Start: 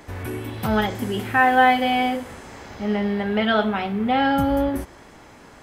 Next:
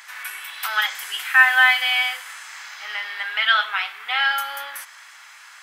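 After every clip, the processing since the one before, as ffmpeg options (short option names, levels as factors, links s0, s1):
-af "highpass=f=1300:w=0.5412,highpass=f=1300:w=1.3066,volume=2.51"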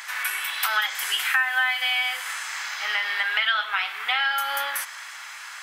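-af "acompressor=threshold=0.0447:ratio=5,volume=2"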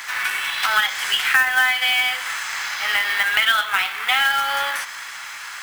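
-filter_complex "[0:a]acrossover=split=7900[s0][s1];[s1]acompressor=threshold=0.00316:ratio=4:attack=1:release=60[s2];[s0][s2]amix=inputs=2:normalize=0,acrusher=bits=3:mode=log:mix=0:aa=0.000001,volume=1.78"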